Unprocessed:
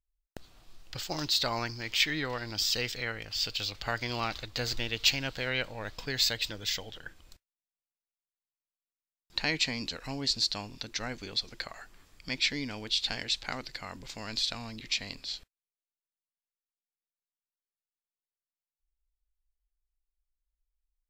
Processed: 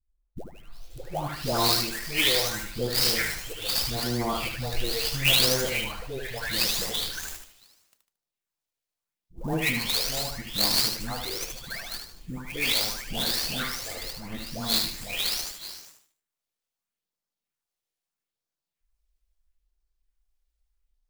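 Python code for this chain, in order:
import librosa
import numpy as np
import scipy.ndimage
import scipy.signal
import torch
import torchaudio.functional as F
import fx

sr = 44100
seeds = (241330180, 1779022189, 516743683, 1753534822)

p1 = fx.spec_delay(x, sr, highs='late', ms=609)
p2 = fx.phaser_stages(p1, sr, stages=4, low_hz=180.0, high_hz=2700.0, hz=0.77, feedback_pct=20)
p3 = p2 + fx.echo_feedback(p2, sr, ms=75, feedback_pct=34, wet_db=-6.0, dry=0)
p4 = fx.clock_jitter(p3, sr, seeds[0], jitter_ms=0.025)
y = p4 * 10.0 ** (8.5 / 20.0)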